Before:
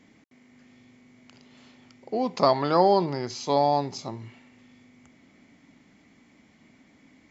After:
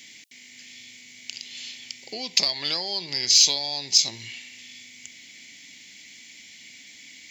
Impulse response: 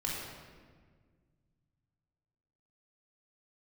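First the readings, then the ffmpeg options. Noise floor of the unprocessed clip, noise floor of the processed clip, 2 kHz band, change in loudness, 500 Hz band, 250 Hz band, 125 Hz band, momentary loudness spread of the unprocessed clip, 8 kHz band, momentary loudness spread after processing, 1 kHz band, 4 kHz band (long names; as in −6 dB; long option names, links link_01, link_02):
−59 dBFS, −48 dBFS, +7.5 dB, +4.0 dB, −16.0 dB, −13.5 dB, −12.5 dB, 16 LU, can't be measured, 22 LU, −17.0 dB, +17.0 dB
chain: -af "acompressor=threshold=-29dB:ratio=6,aexciter=amount=12:drive=8.8:freq=2000,volume=-5.5dB"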